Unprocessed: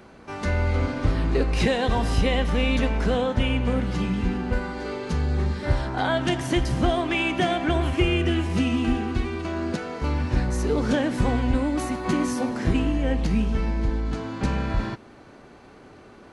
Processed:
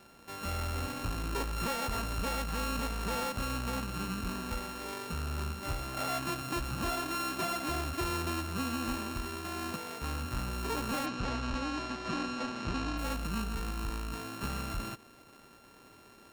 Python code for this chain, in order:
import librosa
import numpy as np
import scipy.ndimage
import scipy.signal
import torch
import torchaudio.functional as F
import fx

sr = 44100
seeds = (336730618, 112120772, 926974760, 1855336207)

y = np.r_[np.sort(x[:len(x) // 32 * 32].reshape(-1, 32), axis=1).ravel(), x[len(x) // 32 * 32:]]
y = fx.low_shelf(y, sr, hz=370.0, db=-4.0)
y = 10.0 ** (-20.0 / 20.0) * np.tanh(y / 10.0 ** (-20.0 / 20.0))
y = fx.lowpass(y, sr, hz=6400.0, slope=24, at=(11.05, 12.97), fade=0.02)
y = y * 10.0 ** (-7.5 / 20.0)